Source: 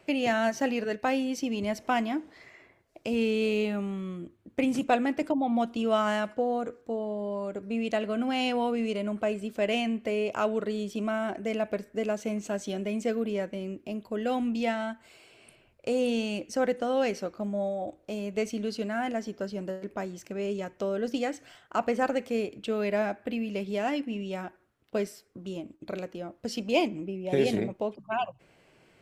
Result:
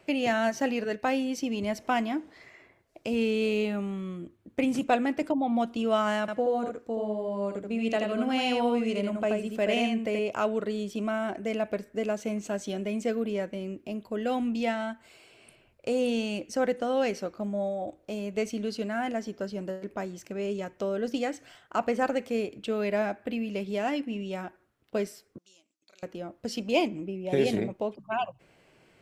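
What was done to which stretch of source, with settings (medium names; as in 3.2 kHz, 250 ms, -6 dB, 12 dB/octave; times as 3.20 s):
6.20–10.19 s: delay 80 ms -4 dB
25.38–26.03 s: band-pass filter 6 kHz, Q 2.2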